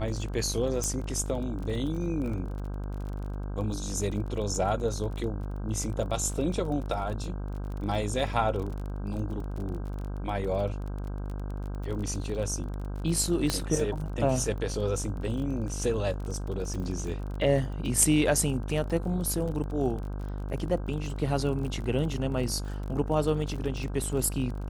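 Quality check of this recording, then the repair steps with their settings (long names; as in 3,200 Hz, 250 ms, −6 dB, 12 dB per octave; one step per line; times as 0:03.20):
mains buzz 50 Hz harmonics 32 −34 dBFS
surface crackle 27 per second −35 dBFS
0:00.84: click
0:13.50: click −12 dBFS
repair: click removal
hum removal 50 Hz, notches 32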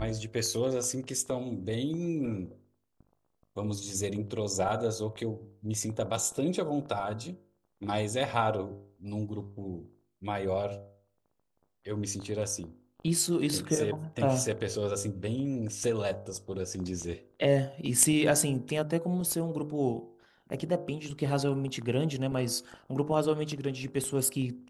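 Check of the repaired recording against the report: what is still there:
0:13.50: click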